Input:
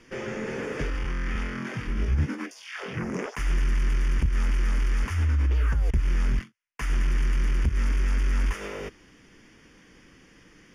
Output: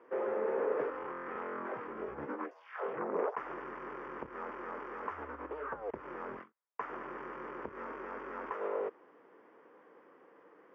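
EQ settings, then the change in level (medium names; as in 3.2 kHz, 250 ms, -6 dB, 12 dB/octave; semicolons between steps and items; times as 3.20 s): Chebyshev band-pass 450–1100 Hz, order 2; +3.5 dB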